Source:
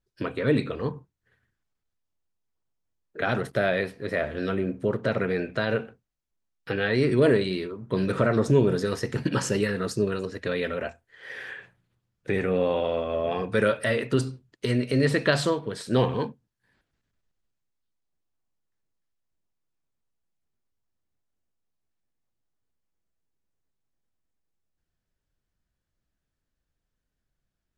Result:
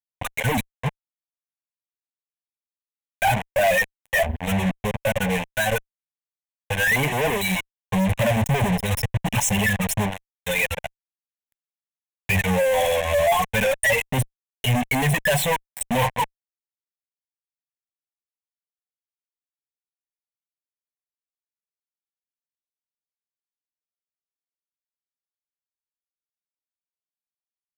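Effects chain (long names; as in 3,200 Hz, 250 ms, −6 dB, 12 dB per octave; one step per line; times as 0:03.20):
spectral dynamics exaggerated over time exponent 3
in parallel at −2 dB: downward compressor 4 to 1, threshold −42 dBFS, peak gain reduction 19 dB
on the sum: fuzz pedal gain 53 dB, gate −44 dBFS
phaser with its sweep stopped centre 1,300 Hz, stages 6
leveller curve on the samples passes 1
level −4 dB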